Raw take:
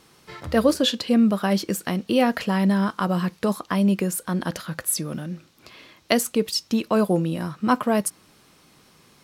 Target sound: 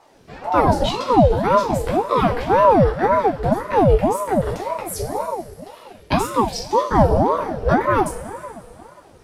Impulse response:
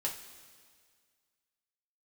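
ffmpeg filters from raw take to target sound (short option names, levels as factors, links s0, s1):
-filter_complex "[0:a]aemphasis=mode=reproduction:type=riaa,crystalizer=i=2:c=0[s0];[1:a]atrim=start_sample=2205,asetrate=31752,aresample=44100[s1];[s0][s1]afir=irnorm=-1:irlink=0,aeval=exprs='val(0)*sin(2*PI*530*n/s+530*0.55/1.9*sin(2*PI*1.9*n/s))':c=same,volume=0.708"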